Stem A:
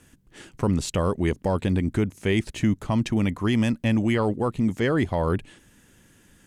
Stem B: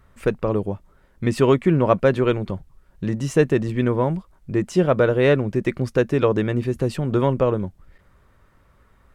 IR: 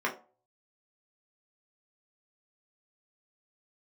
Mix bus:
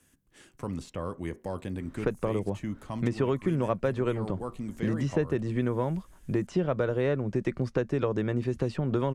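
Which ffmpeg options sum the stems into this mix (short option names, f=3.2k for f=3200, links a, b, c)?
-filter_complex "[0:a]volume=-12dB,asplit=2[a][b];[b]volume=-18.5dB[c];[1:a]lowpass=5.1k,adelay=1800,volume=0dB[d];[2:a]atrim=start_sample=2205[e];[c][e]afir=irnorm=-1:irlink=0[f];[a][d][f]amix=inputs=3:normalize=0,highshelf=f=6.3k:g=9,acrossover=split=110|2000|5400[g][h][i][j];[g]acompressor=threshold=-40dB:ratio=4[k];[h]acompressor=threshold=-26dB:ratio=4[l];[i]acompressor=threshold=-54dB:ratio=4[m];[j]acompressor=threshold=-59dB:ratio=4[n];[k][l][m][n]amix=inputs=4:normalize=0"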